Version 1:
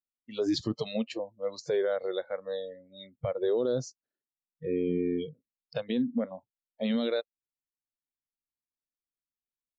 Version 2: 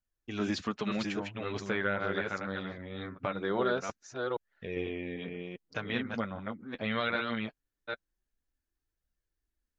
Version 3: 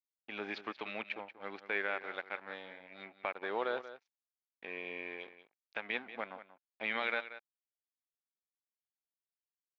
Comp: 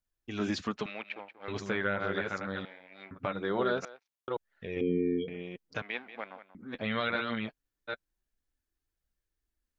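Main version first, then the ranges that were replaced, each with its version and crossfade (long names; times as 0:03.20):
2
0:00.86–0:01.48: punch in from 3
0:02.65–0:03.11: punch in from 3
0:03.85–0:04.28: punch in from 3
0:04.81–0:05.28: punch in from 1
0:05.82–0:06.55: punch in from 3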